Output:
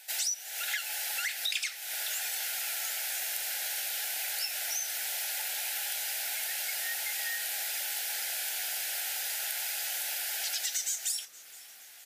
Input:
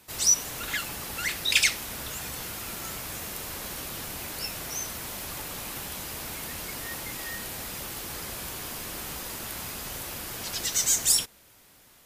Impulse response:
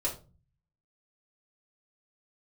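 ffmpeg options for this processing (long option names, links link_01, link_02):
-filter_complex "[0:a]highpass=frequency=790:width=0.5412,highpass=frequency=790:width=1.3066,acompressor=threshold=-35dB:ratio=12,asuperstop=centerf=1100:order=8:qfactor=2,asplit=2[link_01][link_02];[link_02]asplit=4[link_03][link_04][link_05][link_06];[link_03]adelay=468,afreqshift=-140,volume=-20.5dB[link_07];[link_04]adelay=936,afreqshift=-280,volume=-26dB[link_08];[link_05]adelay=1404,afreqshift=-420,volume=-31.5dB[link_09];[link_06]adelay=1872,afreqshift=-560,volume=-37dB[link_10];[link_07][link_08][link_09][link_10]amix=inputs=4:normalize=0[link_11];[link_01][link_11]amix=inputs=2:normalize=0,volume=5.5dB"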